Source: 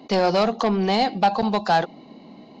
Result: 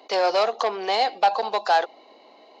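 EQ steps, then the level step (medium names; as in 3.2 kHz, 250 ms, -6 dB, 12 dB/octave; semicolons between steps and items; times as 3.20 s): high-pass 440 Hz 24 dB/octave; 0.0 dB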